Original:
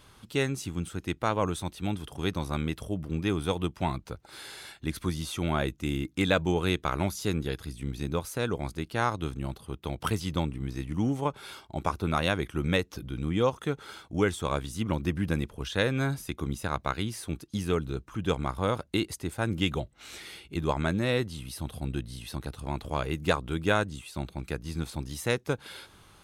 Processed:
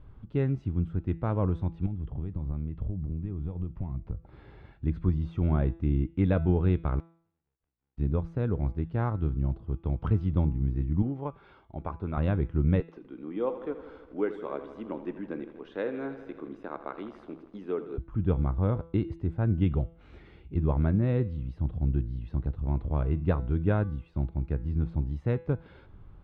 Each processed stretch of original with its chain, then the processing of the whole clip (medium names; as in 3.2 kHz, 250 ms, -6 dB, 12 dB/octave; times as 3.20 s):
1.86–4.73 s: band-stop 1.5 kHz, Q 9.9 + compression, threshold -38 dBFS + tone controls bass +5 dB, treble -8 dB
6.99–7.97 s: formants flattened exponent 0.1 + compression 5:1, threshold -34 dBFS + inverted gate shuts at -33 dBFS, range -40 dB
11.02–12.17 s: low-pass 5.5 kHz + bass shelf 280 Hz -11 dB
12.80–17.98 s: high-pass 300 Hz 24 dB/octave + bit-crushed delay 81 ms, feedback 80%, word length 8-bit, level -12.5 dB
whole clip: low-pass 2.6 kHz 12 dB/octave; tilt EQ -4.5 dB/octave; de-hum 166.3 Hz, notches 27; trim -7.5 dB